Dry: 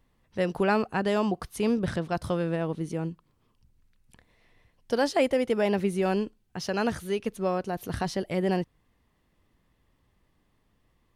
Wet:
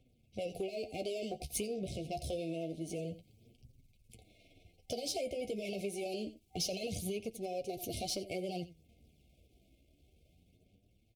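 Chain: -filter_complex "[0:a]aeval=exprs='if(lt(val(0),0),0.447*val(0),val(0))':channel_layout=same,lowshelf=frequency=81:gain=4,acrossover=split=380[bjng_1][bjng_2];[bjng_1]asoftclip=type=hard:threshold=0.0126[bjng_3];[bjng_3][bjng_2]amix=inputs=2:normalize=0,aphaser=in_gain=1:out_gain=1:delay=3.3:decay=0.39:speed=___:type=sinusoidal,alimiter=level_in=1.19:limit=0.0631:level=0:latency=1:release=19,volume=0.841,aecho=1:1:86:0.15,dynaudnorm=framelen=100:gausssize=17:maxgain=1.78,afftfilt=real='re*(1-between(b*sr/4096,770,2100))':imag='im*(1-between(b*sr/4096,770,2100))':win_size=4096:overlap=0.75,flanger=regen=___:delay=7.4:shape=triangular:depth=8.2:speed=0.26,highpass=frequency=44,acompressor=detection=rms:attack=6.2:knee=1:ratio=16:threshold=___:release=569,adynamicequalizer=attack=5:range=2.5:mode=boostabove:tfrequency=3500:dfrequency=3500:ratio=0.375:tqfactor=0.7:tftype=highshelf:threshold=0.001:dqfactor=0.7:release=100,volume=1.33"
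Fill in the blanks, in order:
0.56, 33, 0.0178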